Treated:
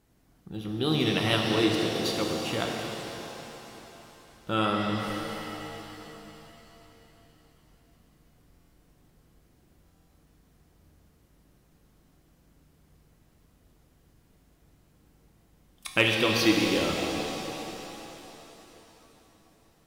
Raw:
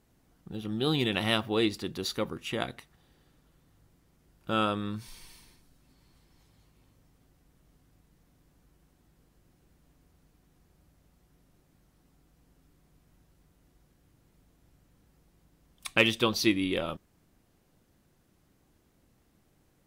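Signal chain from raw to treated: buffer glitch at 8.47/9.83 s, samples 1024, times 10; pitch-shifted reverb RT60 3.7 s, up +7 st, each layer -8 dB, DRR 0 dB

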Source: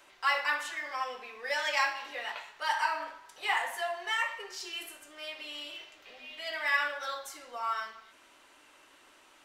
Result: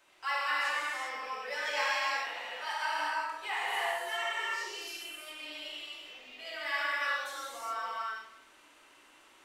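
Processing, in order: gated-style reverb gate 430 ms flat, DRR -7.5 dB; trim -8.5 dB

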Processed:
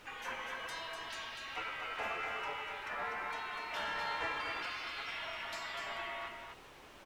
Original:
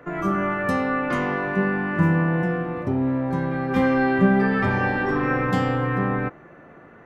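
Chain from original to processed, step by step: spectral gate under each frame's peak -30 dB weak; high-pass 150 Hz 24 dB/octave; in parallel at +3 dB: compression, threshold -59 dBFS, peak gain reduction 19.5 dB; on the sum: added noise pink -60 dBFS; overdrive pedal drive 15 dB, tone 1.2 kHz, clips at -27.5 dBFS; flange 1.2 Hz, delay 2.1 ms, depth 1.4 ms, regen -65%; on a send: delay 246 ms -5.5 dB; on the sum: trim +6 dB

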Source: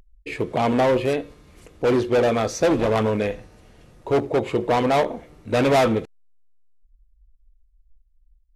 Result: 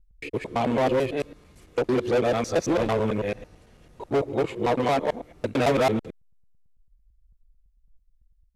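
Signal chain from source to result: time reversed locally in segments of 111 ms; trim -3.5 dB

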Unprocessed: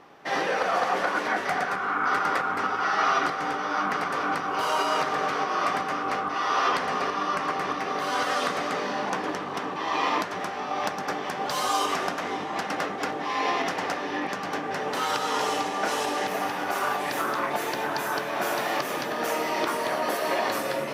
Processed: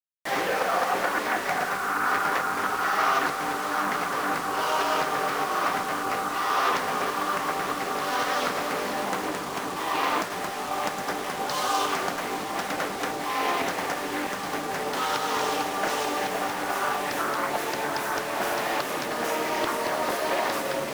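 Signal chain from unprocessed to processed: word length cut 6-bit, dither none; loudspeaker Doppler distortion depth 0.29 ms

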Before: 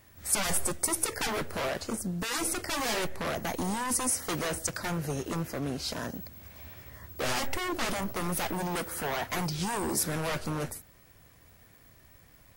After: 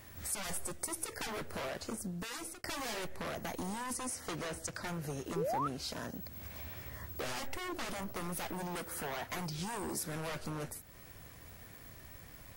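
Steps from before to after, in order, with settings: 2.07–2.64 s: fade out; 3.93–4.87 s: treble shelf 12 kHz -11.5 dB; compression 2.5:1, threshold -48 dBFS, peak gain reduction 17.5 dB; 5.36–5.68 s: painted sound rise 360–1400 Hz -39 dBFS; trim +4.5 dB

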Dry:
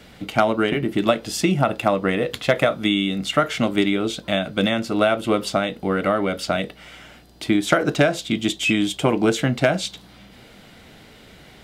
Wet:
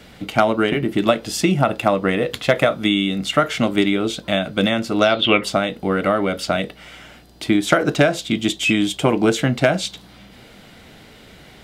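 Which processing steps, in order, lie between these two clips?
5.00–5.43 s: resonant low-pass 6.5 kHz -> 2 kHz, resonance Q 14; trim +2 dB

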